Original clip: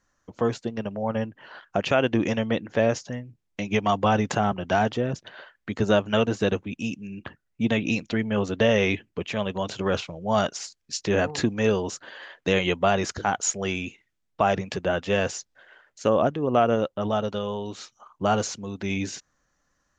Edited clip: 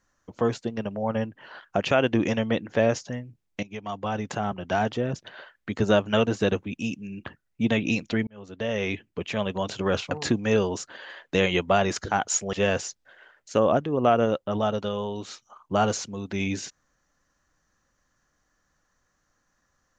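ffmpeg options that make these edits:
-filter_complex "[0:a]asplit=5[a][b][c][d][e];[a]atrim=end=3.63,asetpts=PTS-STARTPTS,afade=t=out:st=3.626:d=0.004:c=hsin:silence=0.149624[f];[b]atrim=start=3.63:end=8.27,asetpts=PTS-STARTPTS,afade=t=in:d=1.65:silence=0.149624,afade=t=out:st=4.636:d=0.004:c=hsin[g];[c]atrim=start=8.27:end=10.112,asetpts=PTS-STARTPTS,afade=t=in:d=1.08[h];[d]atrim=start=11.238:end=13.662[i];[e]atrim=start=15.028[j];[f][g][h]concat=n=3:v=0:a=1[k];[k][i]acrossfade=d=0.004:c1=hsin:c2=hsin[l];[l][j]acrossfade=d=0.004:c1=hsin:c2=hsin"

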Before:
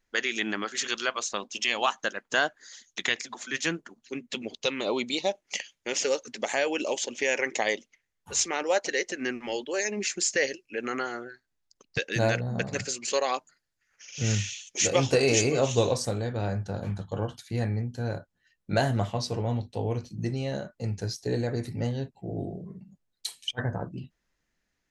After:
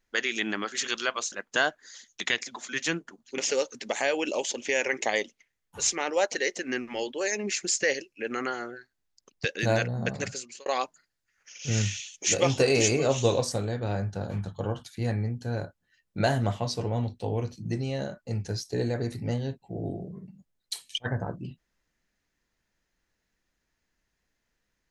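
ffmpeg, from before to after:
-filter_complex "[0:a]asplit=4[a][b][c][d];[a]atrim=end=1.322[e];[b]atrim=start=2.098:end=4.162[f];[c]atrim=start=5.908:end=13.19,asetpts=PTS-STARTPTS,afade=t=out:st=6.802:d=0.48[g];[d]atrim=start=13.19,asetpts=PTS-STARTPTS,afade=t=in:d=0.004:c=hsin[h];[e][f]acrossfade=d=0.004:c1=hsin:c2=hsin[i];[g][h]concat=n=2:v=0:a=1[j];[i][j]acrossfade=d=0.004:c1=hsin:c2=hsin"

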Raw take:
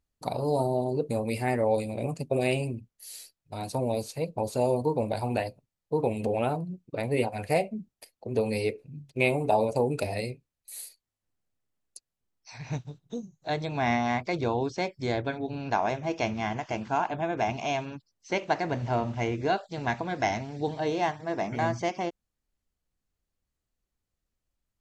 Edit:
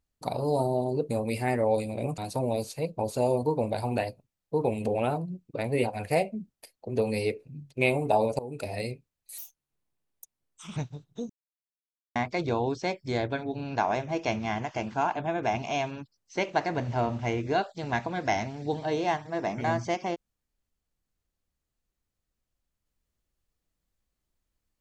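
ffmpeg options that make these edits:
-filter_complex "[0:a]asplit=7[a][b][c][d][e][f][g];[a]atrim=end=2.182[h];[b]atrim=start=3.568:end=9.78,asetpts=PTS-STARTPTS,afade=t=out:st=6.208:d=0.004:c=hsin:silence=0.11885[i];[c]atrim=start=9.78:end=10.774,asetpts=PTS-STARTPTS,afade=t=in:d=0.48:silence=0.11885[j];[d]atrim=start=10.77:end=12.71,asetpts=PTS-STARTPTS,asetrate=61740,aresample=44100,atrim=end_sample=61110,asetpts=PTS-STARTPTS[k];[e]atrim=start=12.706:end=13.24,asetpts=PTS-STARTPTS,afade=t=out:st=0.53:d=0.004:c=hsin[l];[f]atrim=start=13.24:end=14.1,asetpts=PTS-STARTPTS,volume=0[m];[g]atrim=start=14.1,asetpts=PTS-STARTPTS,afade=t=in:d=0.004:c=hsin[n];[i][j]concat=n=2:v=0:a=1[o];[h][o]acrossfade=d=0.004:c1=hsin:c2=hsin[p];[p][k]acrossfade=d=0.004:c1=hsin:c2=hsin[q];[l][m][n]concat=n=3:v=0:a=1[r];[q][r]acrossfade=d=0.004:c1=hsin:c2=hsin"

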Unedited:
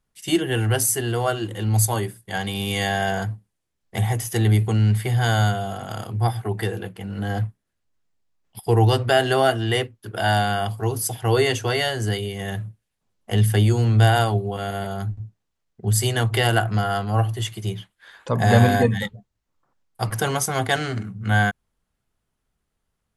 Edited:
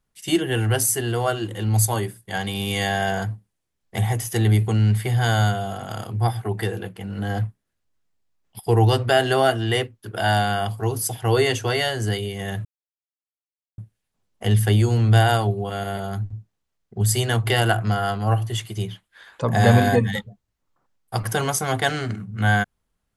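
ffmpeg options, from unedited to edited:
-filter_complex "[0:a]asplit=2[a][b];[a]atrim=end=12.65,asetpts=PTS-STARTPTS,afade=t=out:st=12.646:d=0.004:c=hsin,apad=pad_dur=1.13[c];[b]atrim=start=12.65,asetpts=PTS-STARTPTS,afade=t=in:d=0.004:c=hsin[d];[c][d]concat=n=2:v=0:a=1"

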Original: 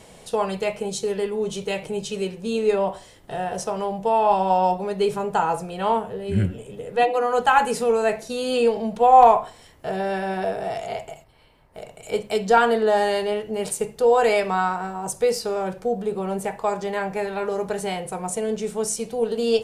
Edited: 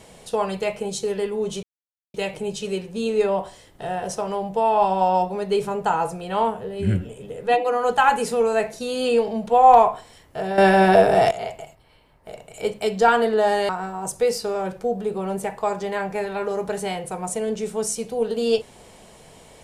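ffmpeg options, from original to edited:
-filter_complex "[0:a]asplit=5[a][b][c][d][e];[a]atrim=end=1.63,asetpts=PTS-STARTPTS,afade=t=out:st=1.626:d=0.004:c=hsin,apad=pad_dur=0.51[f];[b]atrim=start=1.63:end=10.072,asetpts=PTS-STARTPTS,afade=t=in:d=0.004:c=hsin[g];[c]atrim=start=10.068:end=10.802,asetpts=PTS-STARTPTS,volume=11.5dB[h];[d]atrim=start=10.798:end=13.182[i];[e]atrim=start=14.698[j];[f][g]concat=n=2:v=0:a=1[k];[k][h]acrossfade=d=0.004:c1=hsin:c2=hsin[l];[l][i]acrossfade=d=0.004:c1=hsin:c2=hsin[m];[m][j]acrossfade=d=0.004:c1=hsin:c2=hsin"

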